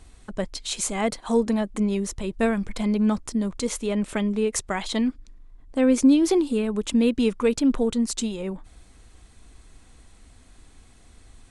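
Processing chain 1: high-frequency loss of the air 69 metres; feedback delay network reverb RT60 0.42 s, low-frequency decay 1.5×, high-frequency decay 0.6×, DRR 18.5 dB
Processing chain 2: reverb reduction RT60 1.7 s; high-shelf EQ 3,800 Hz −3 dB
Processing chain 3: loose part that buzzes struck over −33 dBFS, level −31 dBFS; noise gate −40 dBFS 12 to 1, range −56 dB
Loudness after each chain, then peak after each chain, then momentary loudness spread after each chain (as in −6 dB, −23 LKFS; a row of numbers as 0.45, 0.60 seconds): −24.5, −25.5, −24.0 LKFS; −8.5, −9.5, −8.5 dBFS; 13, 10, 11 LU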